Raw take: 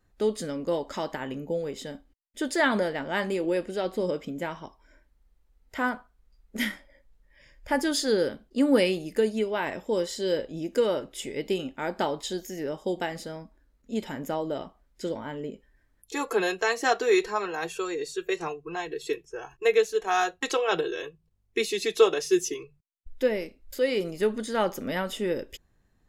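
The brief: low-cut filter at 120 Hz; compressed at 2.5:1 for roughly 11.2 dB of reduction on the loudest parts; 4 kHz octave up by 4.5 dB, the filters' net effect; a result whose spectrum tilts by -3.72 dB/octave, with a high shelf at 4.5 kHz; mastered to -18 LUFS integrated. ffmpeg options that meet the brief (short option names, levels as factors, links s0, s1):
-af "highpass=120,equalizer=f=4000:t=o:g=9,highshelf=f=4500:g=-6.5,acompressor=threshold=0.0316:ratio=2.5,volume=5.96"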